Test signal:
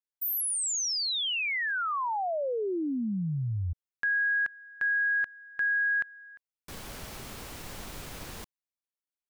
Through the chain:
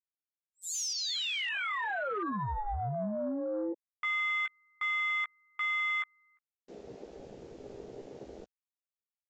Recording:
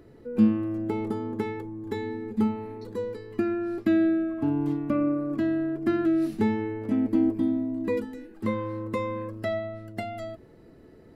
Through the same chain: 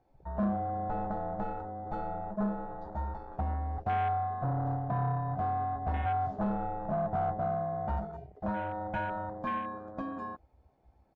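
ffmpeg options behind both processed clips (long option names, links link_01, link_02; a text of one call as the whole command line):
ffmpeg -i in.wav -filter_complex "[0:a]aeval=exprs='val(0)*sin(2*PI*420*n/s)':channel_layout=same,asplit=2[link_01][link_02];[link_02]adelay=15,volume=-7dB[link_03];[link_01][link_03]amix=inputs=2:normalize=0,aresample=16000,asoftclip=type=tanh:threshold=-26dB,aresample=44100,afwtdn=0.0112" out.wav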